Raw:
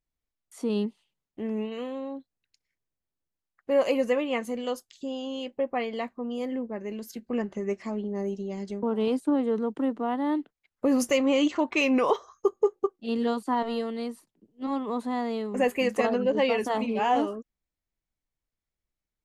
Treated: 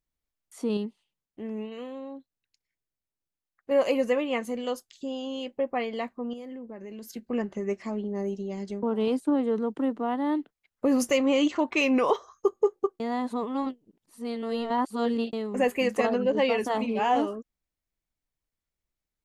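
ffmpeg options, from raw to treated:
-filter_complex "[0:a]asettb=1/sr,asplit=3[s0][s1][s2];[s0]atrim=end=6.334[s3];[s1]atrim=start=6.33:end=7.09,asetpts=PTS-STARTPTS,afade=t=in:d=0.004:c=qsin,afade=t=out:st=0.756:d=0.004:c=qsin,acompressor=threshold=0.0141:ratio=6:attack=3.2:release=140:knee=1:detection=peak[s4];[s2]atrim=start=7.086[s5];[s3][s4]acrossfade=d=0.004:c1=hsin:c2=qsin[s6];[s6][s5]acrossfade=d=0.004:c1=qsin:c2=hsin,asplit=5[s7][s8][s9][s10][s11];[s7]atrim=end=0.772[s12];[s8]atrim=start=0.768:end=3.712,asetpts=PTS-STARTPTS,volume=0.631[s13];[s9]atrim=start=3.708:end=13.002[s14];[s10]atrim=start=12.998:end=15.332,asetpts=PTS-STARTPTS,areverse[s15];[s11]atrim=start=15.328[s16];[s12][s13]acrossfade=d=0.004:c1=hsin:c2=hsin[s17];[s17][s14]acrossfade=d=0.004:c1=hsin:c2=hsin[s18];[s18][s15]acrossfade=d=0.004:c1=hsin:c2=hsin[s19];[s19][s16]acrossfade=d=0.004:c1=hsin:c2=hsin"

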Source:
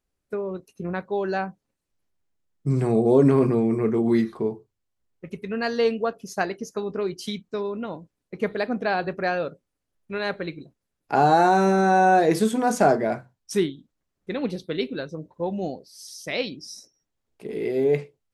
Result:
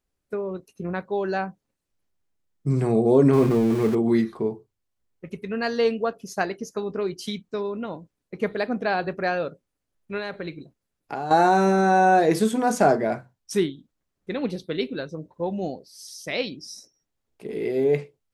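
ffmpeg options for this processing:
-filter_complex "[0:a]asettb=1/sr,asplit=3[s0][s1][s2];[s0]atrim=end=3.334[s3];[s1]atrim=start=3.33:end=3.95,asetpts=PTS-STARTPTS,afade=t=in:d=0.004:c=qsin,afade=t=out:st=0.616:d=0.004:c=qsin,aeval=exprs='val(0)+0.5*0.0335*sgn(val(0))':c=same[s4];[s2]atrim=start=3.946[s5];[s3][s4]acrossfade=d=0.004:c1=hsin:c2=qsin[s6];[s6][s5]acrossfade=d=0.004:c1=qsin:c2=hsin,asettb=1/sr,asplit=3[s7][s8][s9];[s7]atrim=end=10.194[s10];[s8]atrim=start=10.19:end=11.31,asetpts=PTS-STARTPTS,afade=t=in:d=0.004:c=qsin,afade=t=out:st=1.116:d=0.004:c=qsin,acompressor=threshold=0.0447:ratio=5:attack=3.2:release=140:knee=1:detection=peak[s11];[s9]atrim=start=11.306[s12];[s10][s11]acrossfade=d=0.004:c1=hsin:c2=qsin[s13];[s13][s12]acrossfade=d=0.004:c1=qsin:c2=hsin"

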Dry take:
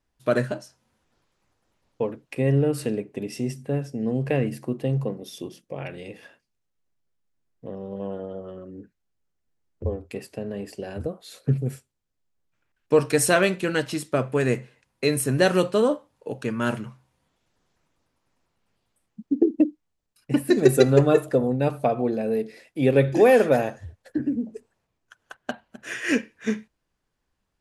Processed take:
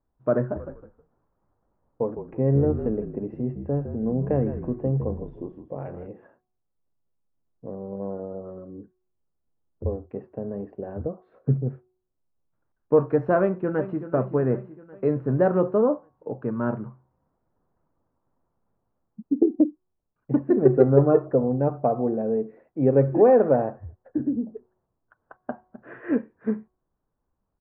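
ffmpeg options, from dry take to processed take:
-filter_complex "[0:a]asplit=3[s0][s1][s2];[s0]afade=t=out:st=0.55:d=0.02[s3];[s1]asplit=4[s4][s5][s6][s7];[s5]adelay=158,afreqshift=-51,volume=0.335[s8];[s6]adelay=316,afreqshift=-102,volume=0.1[s9];[s7]adelay=474,afreqshift=-153,volume=0.0302[s10];[s4][s8][s9][s10]amix=inputs=4:normalize=0,afade=t=in:st=0.55:d=0.02,afade=t=out:st=6.06:d=0.02[s11];[s2]afade=t=in:st=6.06:d=0.02[s12];[s3][s11][s12]amix=inputs=3:normalize=0,asplit=2[s13][s14];[s14]afade=t=in:st=13.4:d=0.01,afade=t=out:st=14.12:d=0.01,aecho=0:1:380|760|1140|1520|1900|2280:0.266073|0.14634|0.0804869|0.0442678|0.0243473|0.013391[s15];[s13][s15]amix=inputs=2:normalize=0,lowpass=f=1200:w=0.5412,lowpass=f=1200:w=1.3066,bandreject=f=368.4:t=h:w=4,bandreject=f=736.8:t=h:w=4,bandreject=f=1105.2:t=h:w=4"

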